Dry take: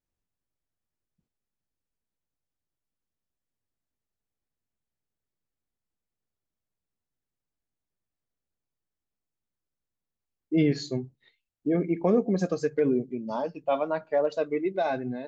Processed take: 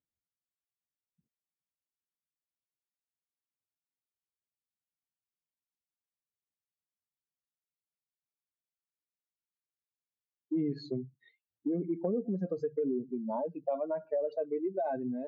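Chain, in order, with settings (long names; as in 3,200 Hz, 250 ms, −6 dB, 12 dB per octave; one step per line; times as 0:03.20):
expanding power law on the bin magnitudes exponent 1.8
downward compressor 3 to 1, threshold −31 dBFS, peak gain reduction 10 dB
band-pass filter 120–3,000 Hz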